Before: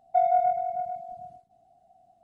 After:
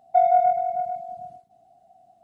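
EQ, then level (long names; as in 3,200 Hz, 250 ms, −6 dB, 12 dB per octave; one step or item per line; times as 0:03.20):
high-pass filter 110 Hz 6 dB per octave
+4.5 dB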